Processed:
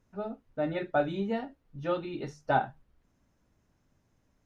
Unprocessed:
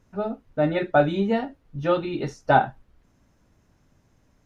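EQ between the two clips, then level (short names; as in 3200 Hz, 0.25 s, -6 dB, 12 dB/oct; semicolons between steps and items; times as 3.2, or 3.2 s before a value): notches 50/100/150 Hz; -8.5 dB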